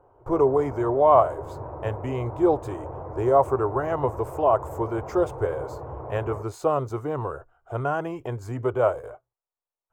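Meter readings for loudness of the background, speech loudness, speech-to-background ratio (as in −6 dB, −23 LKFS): −37.5 LKFS, −25.0 LKFS, 12.5 dB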